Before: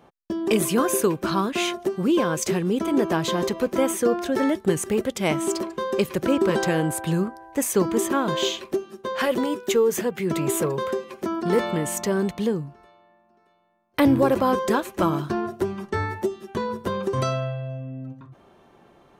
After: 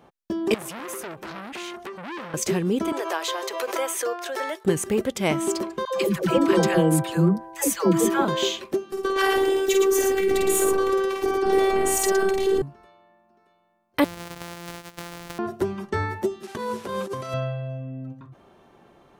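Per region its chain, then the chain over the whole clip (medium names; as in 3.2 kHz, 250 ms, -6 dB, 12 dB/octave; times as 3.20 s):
0.54–2.34 s: compression 3:1, threshold -28 dBFS + transformer saturation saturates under 2.3 kHz
2.92–4.65 s: Bessel high-pass 680 Hz, order 8 + swell ahead of each attack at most 65 dB/s
5.85–8.25 s: comb 6 ms, depth 68% + phase dispersion lows, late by 115 ms, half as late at 530 Hz
8.92–12.62 s: multi-tap echo 50/113 ms -4.5/-4.5 dB + robot voice 387 Hz + level flattener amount 50%
14.04–15.39 s: sorted samples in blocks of 256 samples + bass shelf 470 Hz -8.5 dB + compression 20:1, threshold -31 dBFS
16.43–17.34 s: one-bit delta coder 64 kbps, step -39 dBFS + high-pass 240 Hz 6 dB/octave + compressor with a negative ratio -29 dBFS, ratio -0.5
whole clip: none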